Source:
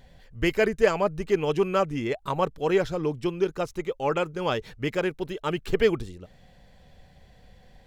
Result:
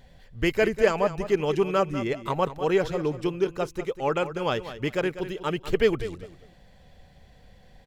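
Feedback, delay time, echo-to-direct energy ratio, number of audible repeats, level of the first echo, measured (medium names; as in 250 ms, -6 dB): 22%, 196 ms, -12.5 dB, 2, -12.5 dB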